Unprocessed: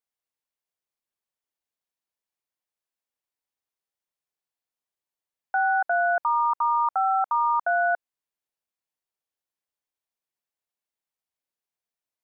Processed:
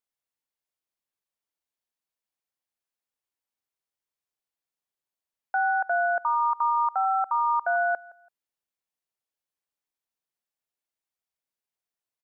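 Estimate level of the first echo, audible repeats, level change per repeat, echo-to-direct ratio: -21.5 dB, 2, -12.0 dB, -21.0 dB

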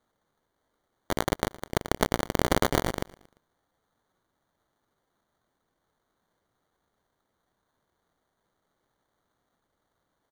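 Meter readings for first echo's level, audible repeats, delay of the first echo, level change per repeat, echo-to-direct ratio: -21.5 dB, 3, 0.115 s, -6.5 dB, -20.5 dB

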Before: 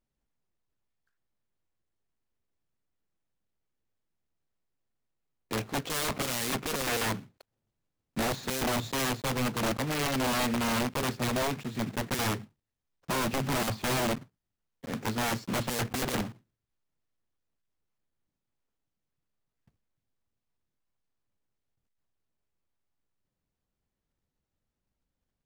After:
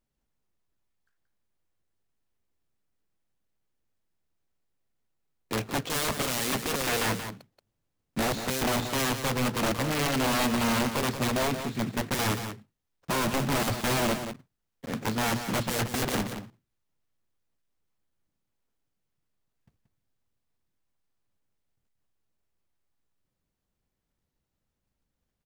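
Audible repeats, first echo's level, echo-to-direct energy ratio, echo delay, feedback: 1, -9.0 dB, -9.0 dB, 0.179 s, no steady repeat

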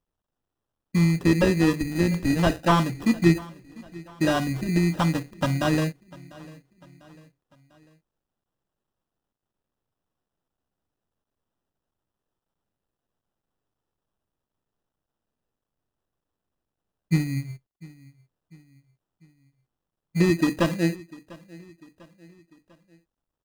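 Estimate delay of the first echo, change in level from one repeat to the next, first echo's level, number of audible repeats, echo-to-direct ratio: 0.697 s, -6.0 dB, -22.0 dB, 3, -21.0 dB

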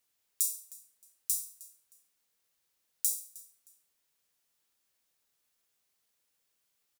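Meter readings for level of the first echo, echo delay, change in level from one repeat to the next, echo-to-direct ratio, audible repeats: -20.5 dB, 0.311 s, -11.5 dB, -20.0 dB, 2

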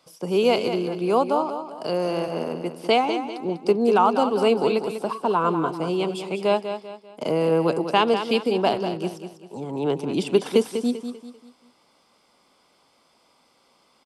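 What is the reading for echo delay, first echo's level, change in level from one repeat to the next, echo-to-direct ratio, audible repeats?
0.196 s, -9.0 dB, -8.5 dB, -8.5 dB, 4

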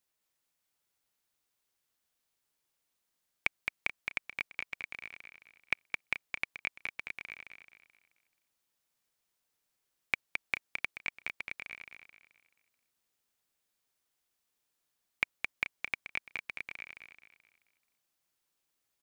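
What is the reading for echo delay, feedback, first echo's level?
0.216 s, 38%, -5.0 dB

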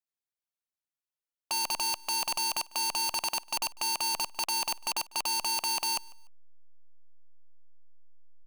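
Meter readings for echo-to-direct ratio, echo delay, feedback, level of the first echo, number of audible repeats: -23.0 dB, 0.148 s, 28%, -23.5 dB, 2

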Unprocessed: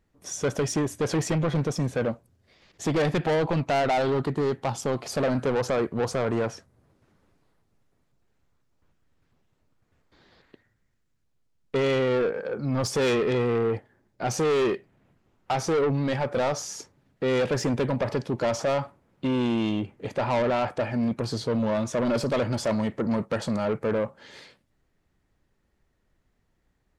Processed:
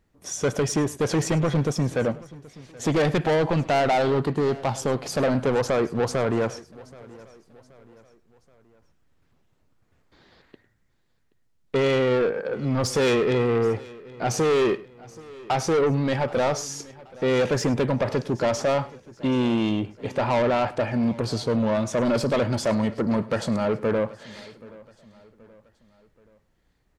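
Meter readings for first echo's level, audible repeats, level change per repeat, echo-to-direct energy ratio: -20.0 dB, 3, no steady repeat, -17.5 dB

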